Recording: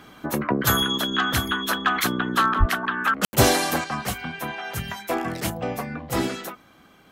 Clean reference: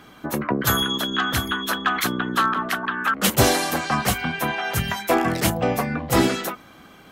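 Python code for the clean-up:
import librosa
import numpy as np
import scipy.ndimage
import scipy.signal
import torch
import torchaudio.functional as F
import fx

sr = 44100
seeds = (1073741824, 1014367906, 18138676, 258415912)

y = fx.fix_deplosive(x, sr, at_s=(2.59,))
y = fx.fix_ambience(y, sr, seeds[0], print_start_s=6.57, print_end_s=7.07, start_s=3.25, end_s=3.33)
y = fx.gain(y, sr, db=fx.steps((0.0, 0.0), (3.84, 6.5)))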